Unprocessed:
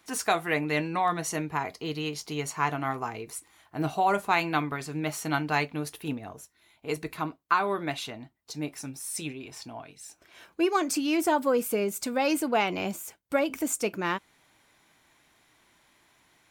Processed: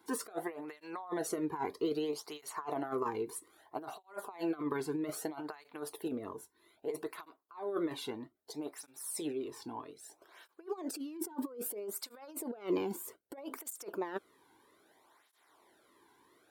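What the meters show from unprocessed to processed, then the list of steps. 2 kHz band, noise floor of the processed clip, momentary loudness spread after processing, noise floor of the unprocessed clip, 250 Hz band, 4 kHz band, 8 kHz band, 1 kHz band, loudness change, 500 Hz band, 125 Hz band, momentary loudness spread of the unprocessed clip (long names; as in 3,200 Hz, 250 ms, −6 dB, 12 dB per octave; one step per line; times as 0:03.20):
−18.0 dB, −73 dBFS, 11 LU, −66 dBFS, −8.0 dB, −12.5 dB, −9.0 dB, −14.5 dB, −10.5 dB, −8.0 dB, −16.0 dB, 16 LU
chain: compressor whose output falls as the input rises −32 dBFS, ratio −0.5
graphic EQ with 15 bands 160 Hz −6 dB, 400 Hz +8 dB, 1,000 Hz +4 dB, 2,500 Hz −9 dB, 6,300 Hz −8 dB
through-zero flanger with one copy inverted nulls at 0.62 Hz, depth 1.7 ms
level −4.5 dB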